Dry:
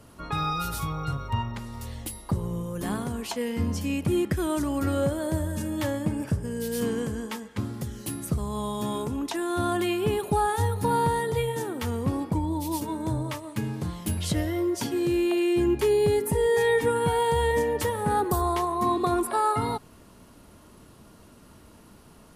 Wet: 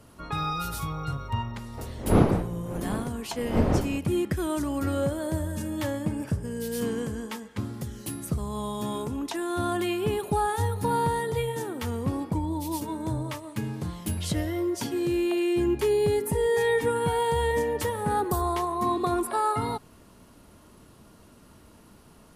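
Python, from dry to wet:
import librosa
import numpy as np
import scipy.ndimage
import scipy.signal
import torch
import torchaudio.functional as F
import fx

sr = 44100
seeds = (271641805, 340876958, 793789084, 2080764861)

y = fx.dmg_wind(x, sr, seeds[0], corner_hz=410.0, level_db=-27.0, at=(1.77, 3.98), fade=0.02)
y = y * 10.0 ** (-1.5 / 20.0)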